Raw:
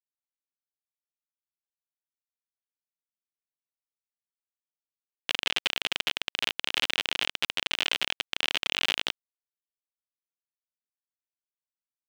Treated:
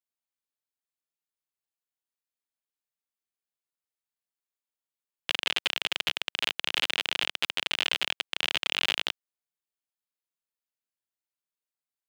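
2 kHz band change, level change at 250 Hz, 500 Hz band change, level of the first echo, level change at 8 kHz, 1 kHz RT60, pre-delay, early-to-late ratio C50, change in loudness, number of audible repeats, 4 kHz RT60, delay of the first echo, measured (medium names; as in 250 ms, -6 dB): 0.0 dB, -1.0 dB, -0.5 dB, no echo, -1.5 dB, no reverb, no reverb, no reverb, 0.0 dB, no echo, no reverb, no echo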